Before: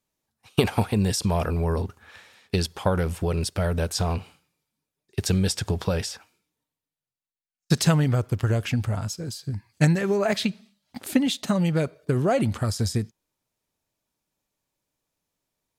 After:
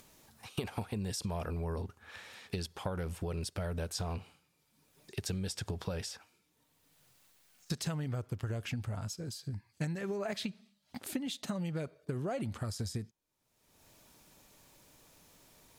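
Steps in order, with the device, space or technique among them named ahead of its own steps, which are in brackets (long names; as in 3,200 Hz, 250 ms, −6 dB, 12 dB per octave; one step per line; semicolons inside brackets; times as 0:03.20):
upward and downward compression (upward compression, threshold −30 dBFS; downward compressor 4 to 1, threshold −25 dBFS, peak gain reduction 10 dB)
level −8.5 dB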